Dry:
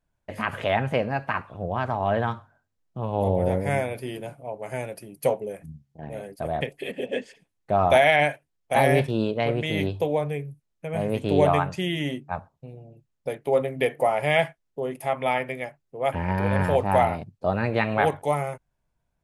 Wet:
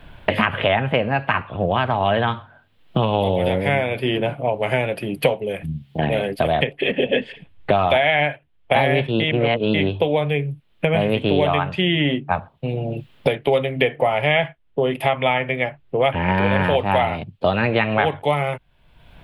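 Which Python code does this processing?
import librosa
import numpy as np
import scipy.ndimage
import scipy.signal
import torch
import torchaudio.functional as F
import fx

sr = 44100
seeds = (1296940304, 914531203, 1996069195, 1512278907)

y = fx.edit(x, sr, fx.reverse_span(start_s=9.2, length_s=0.54), tone=tone)
y = fx.high_shelf_res(y, sr, hz=4500.0, db=-12.5, q=3.0)
y = fx.band_squash(y, sr, depth_pct=100)
y = y * librosa.db_to_amplitude(4.0)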